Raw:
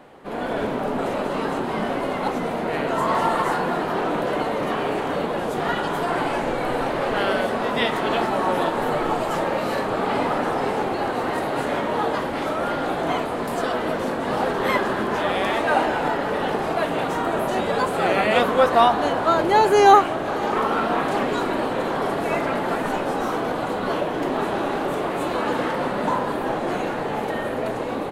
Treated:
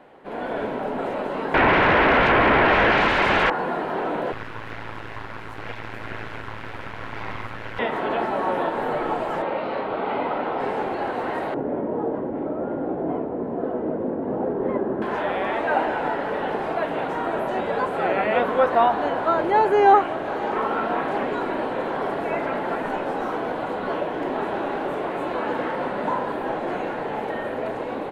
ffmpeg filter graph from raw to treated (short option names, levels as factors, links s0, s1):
-filter_complex "[0:a]asettb=1/sr,asplit=3[s0][s1][s2];[s0]atrim=end=1.544[s3];[s1]atrim=start=1.54:end=3.5,asetpts=PTS-STARTPTS,afade=t=in:d=0.004:c=qsin,afade=t=out:st=1.956:d=0.004:c=qsin,acrossover=split=4000[s4][s5];[s5]acompressor=threshold=0.00316:ratio=4:attack=1:release=60[s6];[s4][s6]amix=inputs=2:normalize=0,highshelf=f=3300:g=-11,aeval=exprs='0.316*sin(PI/2*10*val(0)/0.316)':c=same[s7];[s2]atrim=start=3.496[s8];[s3][s7]acrossfade=d=0.004:c1=hsin:c2=qsin[s9];[s9][s8]acrossfade=d=0.004:c1=qsin:c2=hsin,asettb=1/sr,asplit=3[s10][s11][s12];[s10]atrim=end=4.324[s13];[s11]atrim=start=4.32:end=7.79,asetpts=PTS-STARTPTS,afade=t=in:d=0.004:c=qsin,afade=t=out:st=3.466:d=0.004:c=qsin,highpass=f=370:w=0.5412,highpass=f=370:w=1.3066,aeval=exprs='abs(val(0))':c=same,tremolo=f=110:d=0.71[s14];[s12]atrim=start=7.786[s15];[s13][s14]acrossfade=d=0.004:c1=hsin:c2=qsin[s16];[s16][s15]acrossfade=d=0.004:c1=qsin:c2=hsin,asettb=1/sr,asplit=3[s17][s18][s19];[s17]atrim=end=9.424[s20];[s18]atrim=start=9.42:end=10.6,asetpts=PTS-STARTPTS,afade=t=in:d=0.004:c=qsin,afade=t=out:st=1.176:d=0.004:c=qsin,lowpass=f=4200:w=0.5412,lowpass=f=4200:w=1.3066,lowshelf=f=170:g=-5,bandreject=f=1700:w=8.6[s21];[s19]atrim=start=10.596[s22];[s20][s21]acrossfade=d=0.004:c1=hsin:c2=qsin[s23];[s23][s22]acrossfade=d=0.004:c1=qsin:c2=hsin,asettb=1/sr,asplit=3[s24][s25][s26];[s24]atrim=end=11.544[s27];[s25]atrim=start=11.54:end=15.02,asetpts=PTS-STARTPTS,afade=t=in:d=0.004:c=qsin,afade=t=out:st=3.476:d=0.004:c=qsin,bandpass=f=350:t=q:w=1,aemphasis=mode=reproduction:type=riaa[s28];[s26]atrim=start=15.016[s29];[s27][s28]acrossfade=d=0.004:c1=hsin:c2=qsin[s30];[s30][s29]acrossfade=d=0.004:c1=qsin:c2=hsin,acrossover=split=2700[s31][s32];[s32]acompressor=threshold=0.00891:ratio=4:attack=1:release=60[s33];[s31][s33]amix=inputs=2:normalize=0,bass=f=250:g=-5,treble=f=4000:g=-11,bandreject=f=1200:w=13,volume=0.841"